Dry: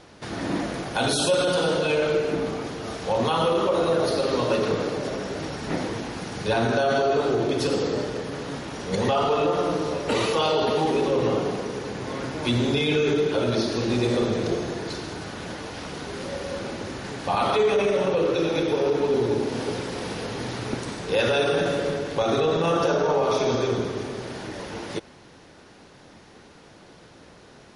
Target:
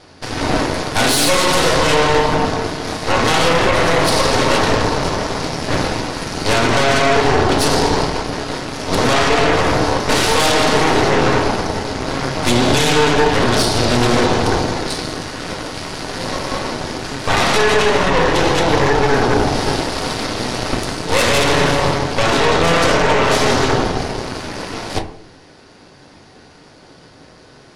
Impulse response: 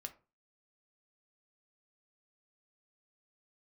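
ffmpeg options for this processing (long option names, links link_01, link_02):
-filter_complex "[0:a]equalizer=frequency=4700:width=6.9:gain=8,aeval=exprs='0.299*(cos(1*acos(clip(val(0)/0.299,-1,1)))-cos(1*PI/2))+0.119*(cos(8*acos(clip(val(0)/0.299,-1,1)))-cos(8*PI/2))':channel_layout=same[link_01];[1:a]atrim=start_sample=2205,asetrate=22932,aresample=44100[link_02];[link_01][link_02]afir=irnorm=-1:irlink=0,volume=5dB"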